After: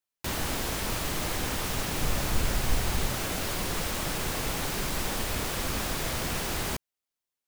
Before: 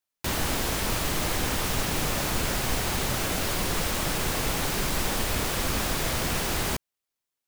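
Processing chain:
0:02.01–0:03.08: low-shelf EQ 85 Hz +10 dB
level −3.5 dB

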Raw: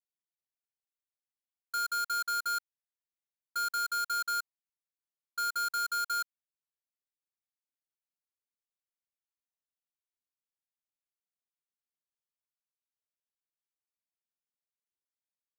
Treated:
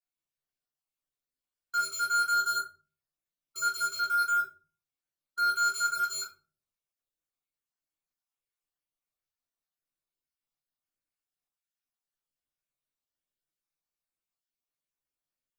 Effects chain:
time-frequency cells dropped at random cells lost 36%
rectangular room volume 210 cubic metres, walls furnished, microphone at 3.4 metres
level −3.5 dB

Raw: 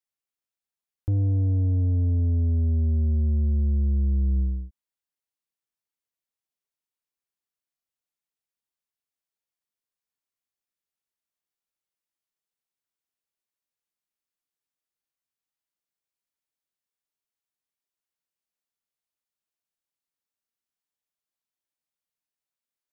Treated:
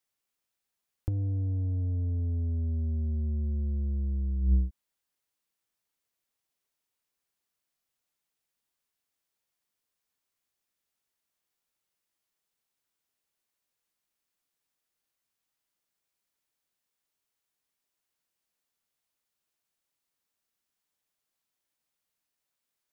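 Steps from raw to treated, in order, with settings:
compressor whose output falls as the input rises −26 dBFS, ratio −0.5

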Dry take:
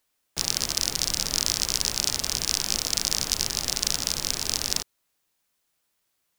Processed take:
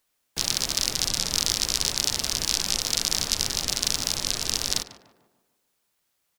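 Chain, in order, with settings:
gate on every frequency bin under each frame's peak −25 dB strong
tape delay 147 ms, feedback 52%, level −10.5 dB, low-pass 1,700 Hz
pitch-shifted copies added −5 semitones −8 dB

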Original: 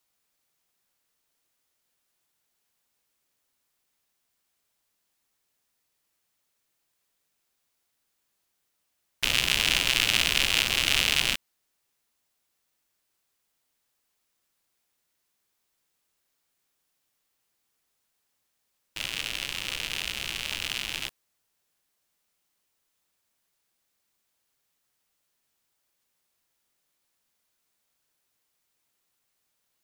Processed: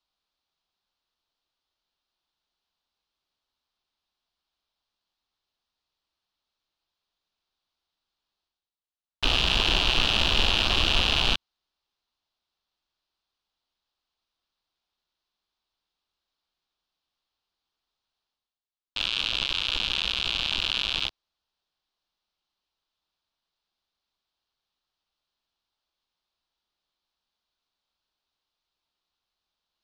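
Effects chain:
octave-band graphic EQ 125/250/500/2,000/4,000/8,000 Hz −11/−6/−8/−12/+7/−12 dB
reversed playback
upward compression, threshold −49 dBFS
reversed playback
leveller curve on the samples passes 5
high-frequency loss of the air 140 metres
level −3 dB

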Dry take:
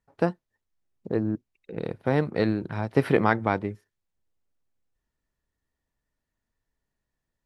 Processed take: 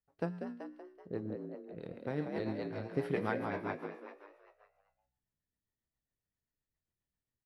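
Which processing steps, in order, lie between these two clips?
tuned comb filter 59 Hz, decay 0.69 s, harmonics odd, mix 70%
on a send: echo with shifted repeats 190 ms, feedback 51%, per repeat +64 Hz, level −3.5 dB
on the sum: rotating-speaker cabinet horn 7.5 Hz
level −3.5 dB

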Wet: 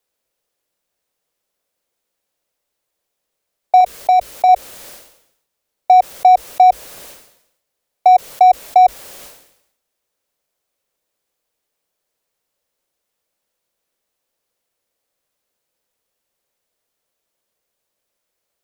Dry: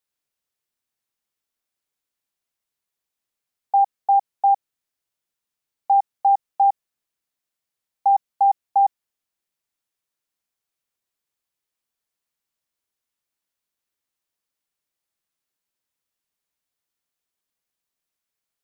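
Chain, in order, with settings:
parametric band 590 Hz +10.5 dB 0.8 octaves
in parallel at −6 dB: hard clipping −18.5 dBFS, distortion −9 dB
on the sum: downward compressor 1.5 to 1, threshold −14 dBFS, peak gain reduction 2.5 dB
0:03.80–0:04.49: dynamic equaliser 890 Hz, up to −7 dB, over −28 dBFS, Q 4.7
frequency shifter −58 Hz
level that may fall only so fast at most 74 dB per second
level +4 dB

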